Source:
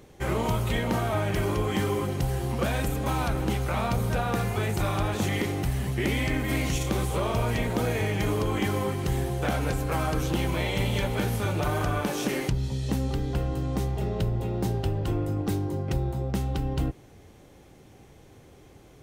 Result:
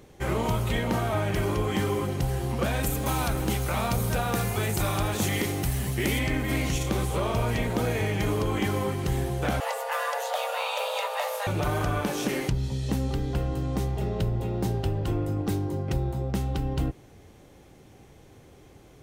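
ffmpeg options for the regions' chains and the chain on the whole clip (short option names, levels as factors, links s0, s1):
-filter_complex "[0:a]asettb=1/sr,asplit=3[s0][s1][s2];[s0]atrim=end=2.834[s3];[s1]atrim=start=2.83:end=6.19,asetpts=PTS-STARTPTS,afade=t=in:d=0.004:c=qsin,afade=t=out:st=3.356:d=0.004:c=qsin,aemphasis=mode=production:type=cd,acrusher=bits=7:mix=0:aa=0.5[s4];[s2]atrim=start=6.186[s5];[s3][s4]acrossfade=d=0.004:c1=hsin:c2=qsin[s6];[s6][s5]acrossfade=d=0.004:c1=qsin:c2=hsin,asettb=1/sr,asplit=3[s7][s8][s9];[s7]atrim=end=9.604[s10];[s8]atrim=start=9.6:end=11.47,asetpts=PTS-STARTPTS,afade=t=in:d=0.004:c=qsin,afade=t=out:st=1.866:d=0.004:c=qsin,highpass=f=200:p=1,afreqshift=400[s11];[s9]atrim=start=11.466[s12];[s10][s11]acrossfade=d=0.004:c1=hsin:c2=qsin[s13];[s13][s12]acrossfade=d=0.004:c1=qsin:c2=hsin"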